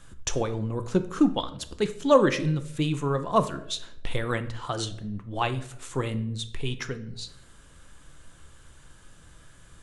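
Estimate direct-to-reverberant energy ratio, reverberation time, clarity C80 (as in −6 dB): 9.0 dB, 0.75 s, 17.0 dB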